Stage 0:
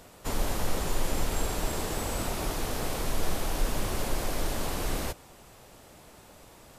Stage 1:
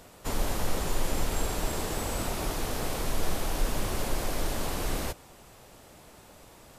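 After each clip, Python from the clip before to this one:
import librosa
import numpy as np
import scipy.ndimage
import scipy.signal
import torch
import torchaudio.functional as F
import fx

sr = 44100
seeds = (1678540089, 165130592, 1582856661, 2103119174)

y = x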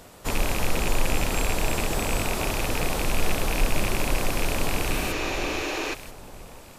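y = fx.rattle_buzz(x, sr, strikes_db=-33.0, level_db=-21.0)
y = fx.echo_alternate(y, sr, ms=493, hz=1200.0, feedback_pct=50, wet_db=-6.0)
y = fx.spec_repair(y, sr, seeds[0], start_s=4.95, length_s=0.96, low_hz=260.0, high_hz=7300.0, source='before')
y = y * 10.0 ** (4.0 / 20.0)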